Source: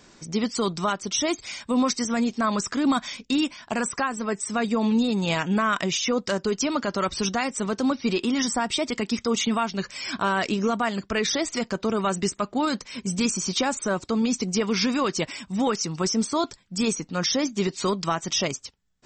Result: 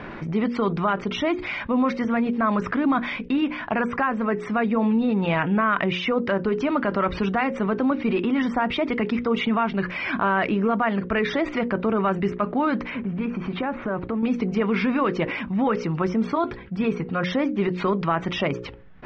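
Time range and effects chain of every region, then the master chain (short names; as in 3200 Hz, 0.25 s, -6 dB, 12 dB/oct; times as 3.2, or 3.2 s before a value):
12.9–14.23 block floating point 5-bit + air absorption 320 m + compressor 2:1, threshold -34 dBFS
16.35–17.24 bell 6900 Hz -13.5 dB 0.23 oct + notch comb 300 Hz
whole clip: LPF 2400 Hz 24 dB/oct; notches 60/120/180/240/300/360/420/480/540 Hz; fast leveller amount 50%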